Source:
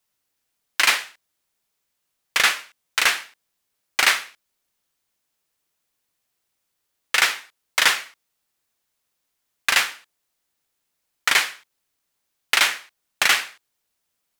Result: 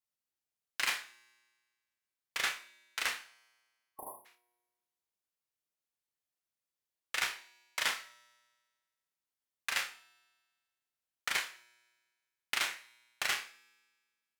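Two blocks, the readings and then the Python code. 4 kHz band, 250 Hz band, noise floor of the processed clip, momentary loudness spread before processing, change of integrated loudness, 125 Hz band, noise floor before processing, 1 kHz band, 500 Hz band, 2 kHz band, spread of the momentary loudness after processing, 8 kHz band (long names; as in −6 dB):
−16.0 dB, −14.5 dB, below −85 dBFS, 11 LU, −15.5 dB, can't be measured, −77 dBFS, −15.5 dB, −15.0 dB, −16.0 dB, 15 LU, −15.5 dB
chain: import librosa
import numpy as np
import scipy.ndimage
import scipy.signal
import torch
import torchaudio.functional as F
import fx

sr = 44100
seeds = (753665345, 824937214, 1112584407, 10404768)

p1 = fx.spec_erase(x, sr, start_s=3.54, length_s=0.71, low_hz=1100.0, high_hz=9700.0)
p2 = fx.cheby_harmonics(p1, sr, harmonics=(2, 3, 8), levels_db=(-28, -16, -42), full_scale_db=-2.5)
p3 = fx.comb_fb(p2, sr, f0_hz=120.0, decay_s=1.5, harmonics='all', damping=0.0, mix_pct=40)
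p4 = p3 + fx.room_flutter(p3, sr, wall_m=5.2, rt60_s=0.23, dry=0)
y = F.gain(torch.from_numpy(p4), -8.0).numpy()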